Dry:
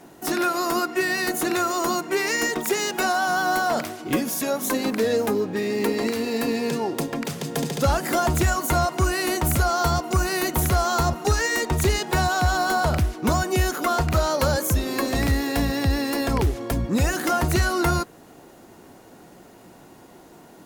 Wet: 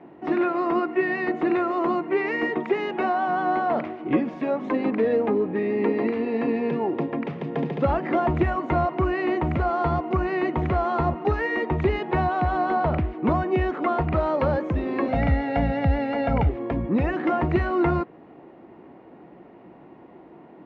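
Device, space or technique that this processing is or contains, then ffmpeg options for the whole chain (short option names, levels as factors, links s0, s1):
bass cabinet: -filter_complex "[0:a]asettb=1/sr,asplit=3[s0][s1][s2];[s0]atrim=end=15.084[s3];[s1]atrim=start=15.08:end=16.49,asetpts=PTS-STARTPTS,afade=t=in:d=0.004:c=qsin,afade=t=out:st=1.406:d=0.004:c=qsin,aecho=1:1:1.4:0.96,atrim=end_sample=62181[s4];[s2]atrim=start=16.486[s5];[s3][s4]acrossfade=d=0.004:c1=hsin:c2=qsin[s6];[s6][s5]acrossfade=d=0.004:c1=qsin:c2=hsin,highpass=71,equalizer=f=100:t=q:w=4:g=-7,equalizer=f=330:t=q:w=4:g=4,equalizer=f=1500:t=q:w=4:g=-8,lowpass=f=2300:w=0.5412,lowpass=f=2300:w=1.3066"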